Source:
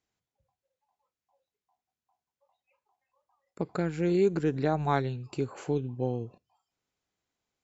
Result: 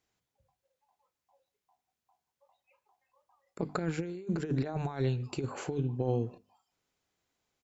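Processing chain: hum notches 50/100/150/200/250/300 Hz; compressor with a negative ratio -31 dBFS, ratio -0.5; speakerphone echo 150 ms, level -24 dB

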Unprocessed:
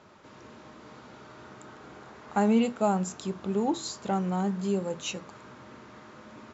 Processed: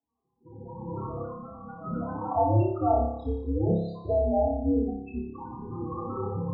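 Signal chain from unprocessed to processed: 4.44–5.35 s: median filter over 41 samples; recorder AGC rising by 18 dB/s; gate -39 dBFS, range -28 dB; 1.22–1.85 s: level held to a coarse grid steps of 19 dB; Chebyshev shaper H 2 -23 dB, 6 -14 dB, 8 -29 dB, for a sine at -10.5 dBFS; loudest bins only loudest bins 8; mistuned SSB -120 Hz 270–2800 Hz; flutter echo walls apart 5 m, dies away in 0.77 s; Shepard-style flanger rising 0.36 Hz; trim +6.5 dB

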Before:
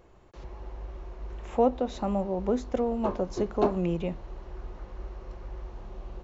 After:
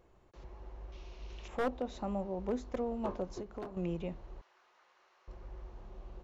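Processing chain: one-sided wavefolder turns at -17.5 dBFS; 0.92–1.48 s: high-order bell 3.9 kHz +14.5 dB; 3.24–3.77 s: compression 10:1, threshold -31 dBFS, peak gain reduction 12 dB; 4.41–5.28 s: high-pass 1.3 kHz 12 dB/octave; trim -8 dB

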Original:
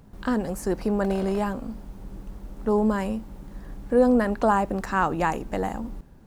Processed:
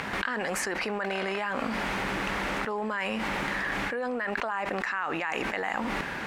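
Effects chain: band-pass filter 2.1 kHz, Q 2.1; level flattener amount 100%; trim -1.5 dB

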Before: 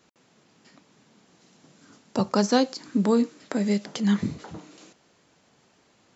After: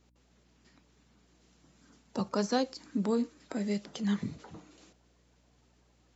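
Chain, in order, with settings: coarse spectral quantiser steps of 15 dB; hum 60 Hz, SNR 32 dB; trim -8 dB

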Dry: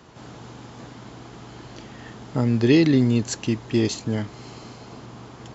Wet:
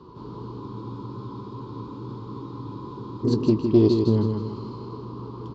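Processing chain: treble shelf 3.8 kHz -6.5 dB; doubling 19 ms -11.5 dB; spectral selection erased 2.48–3.27 s, 2.1–4.9 kHz; FFT filter 240 Hz 0 dB, 410 Hz +6 dB, 720 Hz -19 dB, 1 kHz +7 dB, 1.8 kHz -24 dB, 4.4 kHz -3 dB, 6.6 kHz -21 dB; feedback delay 159 ms, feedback 43%, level -5.5 dB; spectral freeze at 0.62 s, 2.62 s; loudspeaker Doppler distortion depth 0.11 ms; trim +2.5 dB

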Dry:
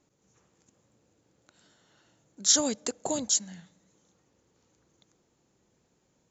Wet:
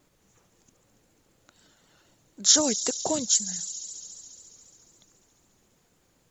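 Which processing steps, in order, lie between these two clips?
feedback echo behind a high-pass 70 ms, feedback 85%, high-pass 4.3 kHz, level -7 dB; reverb removal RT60 0.64 s; added noise pink -73 dBFS; vibrato 3.9 Hz 41 cents; trim +3.5 dB

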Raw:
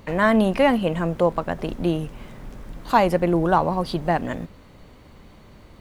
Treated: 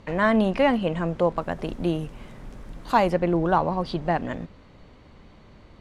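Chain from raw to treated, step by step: low-pass 6.6 kHz 12 dB/octave, from 1.38 s 11 kHz, from 3.10 s 5.6 kHz; trim -2.5 dB

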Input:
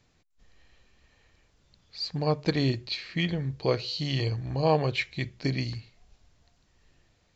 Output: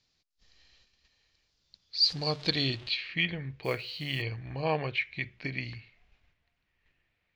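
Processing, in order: 2.03–2.92 s: jump at every zero crossing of -39 dBFS; gate -59 dBFS, range -7 dB; treble shelf 2.4 kHz +11 dB; 4.87–5.63 s: compression, threshold -24 dBFS, peak gain reduction 6.5 dB; low-pass sweep 4.8 kHz -> 2.3 kHz, 2.16–3.38 s; 3.63–4.22 s: companded quantiser 6-bit; trim -7.5 dB

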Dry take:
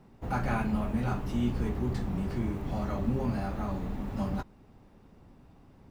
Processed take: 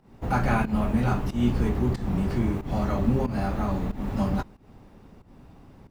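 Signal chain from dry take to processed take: volume shaper 92 bpm, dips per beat 1, -16 dB, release 186 ms; trim +6.5 dB

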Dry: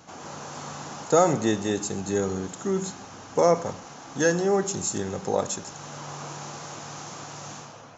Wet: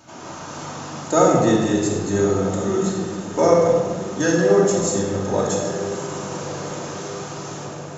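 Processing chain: echo that smears into a reverb 1272 ms, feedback 52%, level -12 dB; simulated room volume 1300 m³, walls mixed, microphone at 2.7 m

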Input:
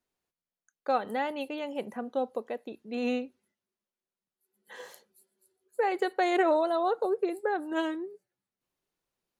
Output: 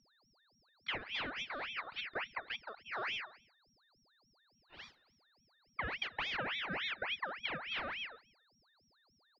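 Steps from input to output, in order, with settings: distance through air 460 m; compression 10:1, threshold -30 dBFS, peak gain reduction 9 dB; delay 267 ms -22 dB; whistle 2.7 kHz -57 dBFS; gate -50 dBFS, range -8 dB; ring modulator with a swept carrier 1.9 kHz, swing 55%, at 3.5 Hz; trim -2.5 dB

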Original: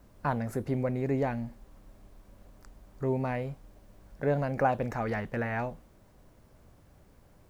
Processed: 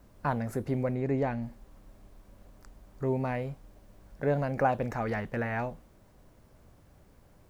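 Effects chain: 0.94–1.41 s: treble shelf 4.3 kHz -> 8.2 kHz -8 dB

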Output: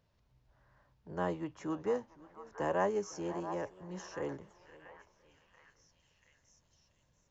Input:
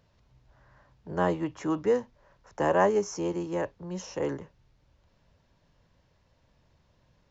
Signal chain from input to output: repeats whose band climbs or falls 684 ms, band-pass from 940 Hz, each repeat 0.7 oct, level -7 dB; modulated delay 512 ms, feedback 32%, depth 161 cents, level -21 dB; trim -8.5 dB

